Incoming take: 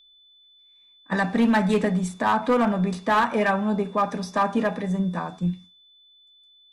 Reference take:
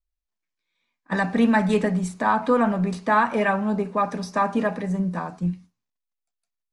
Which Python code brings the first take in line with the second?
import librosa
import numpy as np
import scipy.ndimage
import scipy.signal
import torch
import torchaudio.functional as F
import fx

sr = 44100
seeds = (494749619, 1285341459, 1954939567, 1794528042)

y = fx.fix_declip(x, sr, threshold_db=-14.5)
y = fx.notch(y, sr, hz=3500.0, q=30.0)